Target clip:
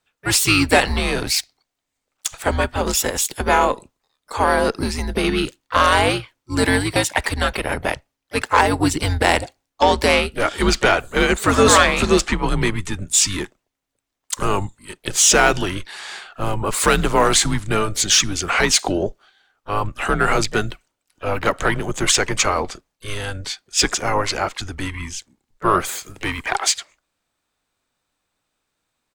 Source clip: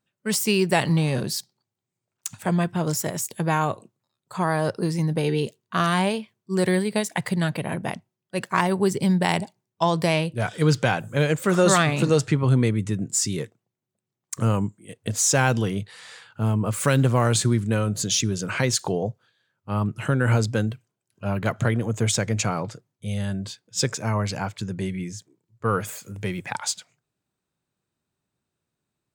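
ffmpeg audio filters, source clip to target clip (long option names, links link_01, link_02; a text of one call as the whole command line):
ffmpeg -i in.wav -filter_complex "[0:a]afreqshift=-99,asplit=2[link_01][link_02];[link_02]highpass=frequency=720:poles=1,volume=13dB,asoftclip=type=tanh:threshold=-3.5dB[link_03];[link_01][link_03]amix=inputs=2:normalize=0,lowpass=frequency=7600:poles=1,volume=-6dB,asplit=3[link_04][link_05][link_06];[link_05]asetrate=22050,aresample=44100,atempo=2,volume=-10dB[link_07];[link_06]asetrate=55563,aresample=44100,atempo=0.793701,volume=-15dB[link_08];[link_04][link_07][link_08]amix=inputs=3:normalize=0,volume=2.5dB" out.wav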